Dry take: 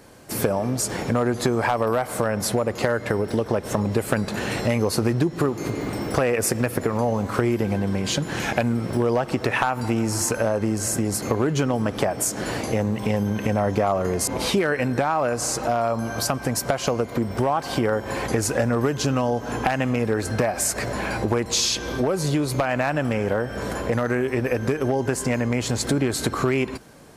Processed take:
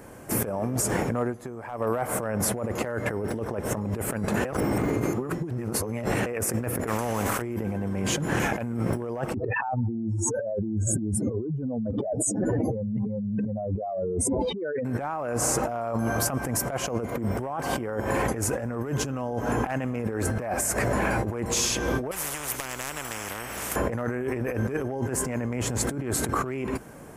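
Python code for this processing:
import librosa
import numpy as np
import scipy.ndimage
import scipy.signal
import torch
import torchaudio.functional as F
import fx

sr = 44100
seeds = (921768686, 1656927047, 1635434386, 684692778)

y = fx.spectral_comp(x, sr, ratio=2.0, at=(6.87, 7.42))
y = fx.spec_expand(y, sr, power=3.0, at=(9.34, 14.85))
y = fx.spectral_comp(y, sr, ratio=10.0, at=(22.11, 23.76))
y = fx.edit(y, sr, fx.fade_down_up(start_s=0.95, length_s=1.19, db=-19.5, fade_s=0.43),
    fx.reverse_span(start_s=4.45, length_s=1.81), tone=tone)
y = fx.peak_eq(y, sr, hz=4200.0, db=-13.5, octaves=0.99)
y = fx.over_compress(y, sr, threshold_db=-28.0, ratio=-1.0)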